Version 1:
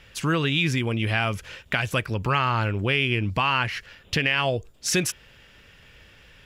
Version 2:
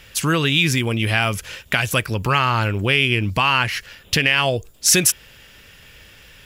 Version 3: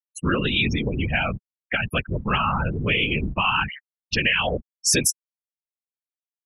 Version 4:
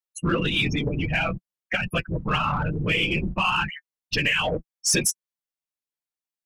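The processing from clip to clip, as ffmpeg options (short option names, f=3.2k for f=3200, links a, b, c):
-af "aemphasis=mode=production:type=50kf,volume=4dB"
-af "acrusher=bits=6:mode=log:mix=0:aa=0.000001,afftfilt=real='re*gte(hypot(re,im),0.2)':imag='im*gte(hypot(re,im),0.2)':win_size=1024:overlap=0.75,afftfilt=real='hypot(re,im)*cos(2*PI*random(0))':imag='hypot(re,im)*sin(2*PI*random(1))':win_size=512:overlap=0.75,volume=2.5dB"
-filter_complex "[0:a]asplit=2[a][b];[b]asoftclip=type=tanh:threshold=-23dB,volume=-5dB[c];[a][c]amix=inputs=2:normalize=0,flanger=delay=5.3:depth=1.6:regen=33:speed=0.59:shape=triangular"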